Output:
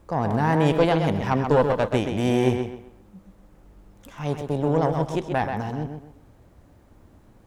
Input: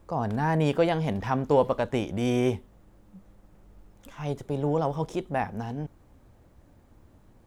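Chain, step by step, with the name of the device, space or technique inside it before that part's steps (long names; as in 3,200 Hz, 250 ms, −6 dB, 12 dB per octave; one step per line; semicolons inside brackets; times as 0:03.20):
rockabilly slapback (tube saturation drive 16 dB, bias 0.6; tape delay 129 ms, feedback 32%, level −5 dB, low-pass 4,700 Hz)
level +6 dB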